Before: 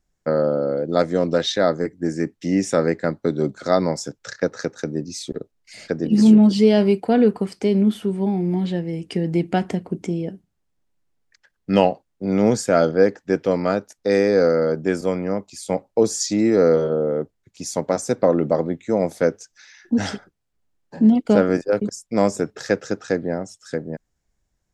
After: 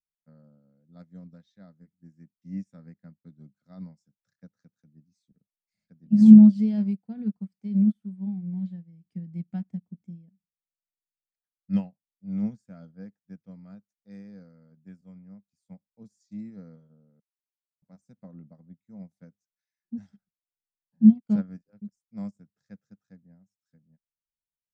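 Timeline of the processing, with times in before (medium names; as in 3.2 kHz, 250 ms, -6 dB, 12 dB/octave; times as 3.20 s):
17.20–17.82 s: mute
whole clip: resonant low shelf 270 Hz +11 dB, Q 3; band-stop 2.9 kHz, Q 11; upward expansion 2.5:1, over -17 dBFS; trim -11.5 dB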